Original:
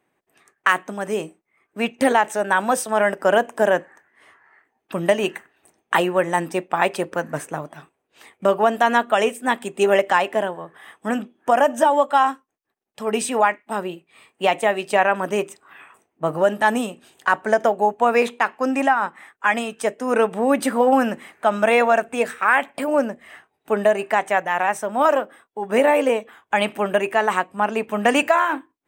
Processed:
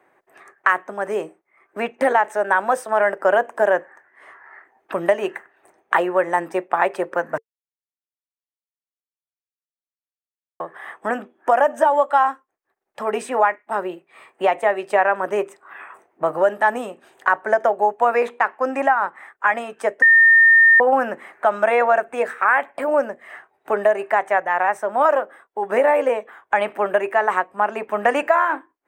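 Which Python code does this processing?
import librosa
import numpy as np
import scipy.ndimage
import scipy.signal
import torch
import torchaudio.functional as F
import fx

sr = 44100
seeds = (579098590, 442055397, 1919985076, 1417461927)

y = fx.edit(x, sr, fx.silence(start_s=7.38, length_s=3.22),
    fx.bleep(start_s=20.02, length_s=0.78, hz=1820.0, db=-7.0), tone=tone)
y = fx.band_shelf(y, sr, hz=860.0, db=11.5, octaves=2.9)
y = fx.notch(y, sr, hz=450.0, q=12.0)
y = fx.band_squash(y, sr, depth_pct=40)
y = y * librosa.db_to_amplitude(-10.5)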